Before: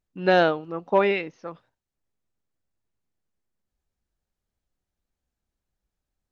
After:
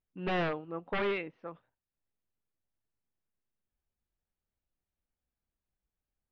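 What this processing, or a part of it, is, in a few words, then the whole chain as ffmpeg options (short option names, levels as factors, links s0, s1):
synthesiser wavefolder: -af "aeval=exprs='0.119*(abs(mod(val(0)/0.119+3,4)-2)-1)':c=same,lowpass=f=3200:w=0.5412,lowpass=f=3200:w=1.3066,volume=0.447"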